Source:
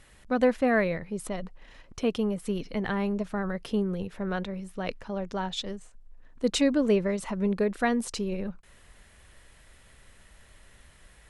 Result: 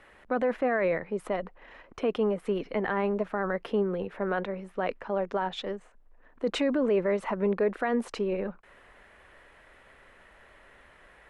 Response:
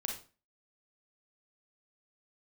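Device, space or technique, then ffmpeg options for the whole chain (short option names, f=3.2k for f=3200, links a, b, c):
DJ mixer with the lows and highs turned down: -filter_complex "[0:a]acrossover=split=290 2500:gain=0.178 1 0.1[a][b][c];[a][b][c]amix=inputs=3:normalize=0,alimiter=level_in=1dB:limit=-24dB:level=0:latency=1:release=13,volume=-1dB,volume=6.5dB"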